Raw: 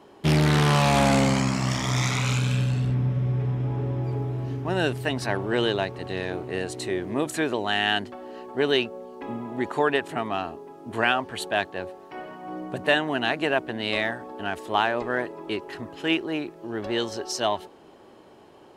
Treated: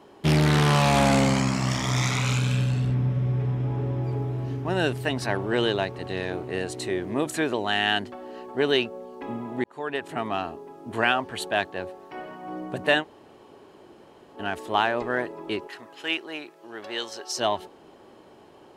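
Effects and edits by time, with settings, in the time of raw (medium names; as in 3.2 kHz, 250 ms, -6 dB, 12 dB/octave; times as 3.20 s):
9.64–10.26 s: fade in
13.02–14.37 s: room tone, crossfade 0.06 s
15.67–17.37 s: high-pass 1 kHz 6 dB/octave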